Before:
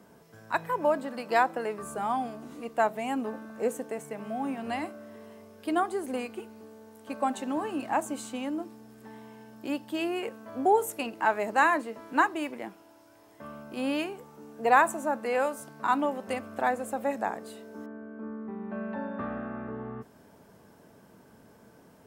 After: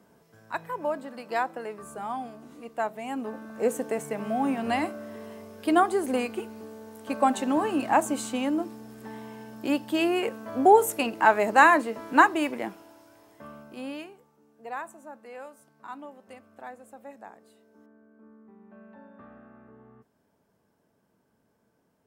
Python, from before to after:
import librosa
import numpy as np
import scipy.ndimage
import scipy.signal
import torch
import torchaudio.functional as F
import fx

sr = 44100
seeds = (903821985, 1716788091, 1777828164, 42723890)

y = fx.gain(x, sr, db=fx.line((2.98, -4.0), (3.89, 6.0), (12.67, 6.0), (13.61, -2.5), (14.4, -15.0)))